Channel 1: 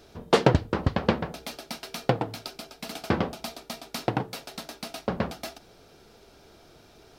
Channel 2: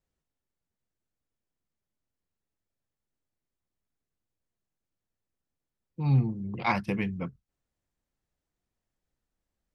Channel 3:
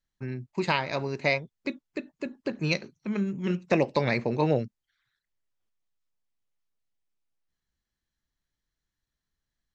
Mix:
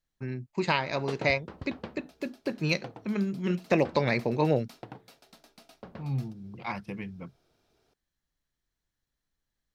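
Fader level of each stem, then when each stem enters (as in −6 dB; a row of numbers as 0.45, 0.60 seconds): −17.5, −8.0, −0.5 decibels; 0.75, 0.00, 0.00 seconds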